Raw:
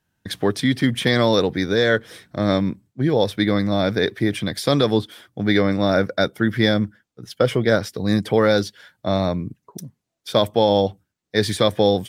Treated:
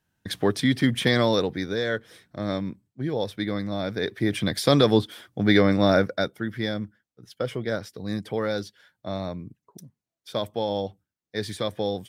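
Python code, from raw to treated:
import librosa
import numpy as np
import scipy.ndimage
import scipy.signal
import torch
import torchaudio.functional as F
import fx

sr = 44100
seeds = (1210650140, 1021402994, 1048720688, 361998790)

y = fx.gain(x, sr, db=fx.line((1.07, -2.5), (1.83, -9.0), (3.93, -9.0), (4.46, -0.5), (5.91, -0.5), (6.46, -10.5)))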